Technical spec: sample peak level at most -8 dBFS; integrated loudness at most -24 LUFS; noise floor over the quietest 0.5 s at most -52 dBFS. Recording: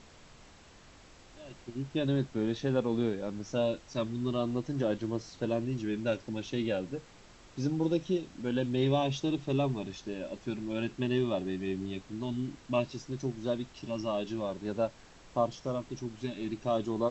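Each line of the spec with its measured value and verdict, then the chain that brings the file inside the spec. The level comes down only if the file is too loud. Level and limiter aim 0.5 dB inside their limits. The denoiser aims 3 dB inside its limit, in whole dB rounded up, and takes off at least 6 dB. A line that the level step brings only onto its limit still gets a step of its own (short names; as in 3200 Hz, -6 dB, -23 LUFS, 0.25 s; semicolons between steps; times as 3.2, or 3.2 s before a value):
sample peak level -15.0 dBFS: OK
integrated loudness -33.5 LUFS: OK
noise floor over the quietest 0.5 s -55 dBFS: OK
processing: none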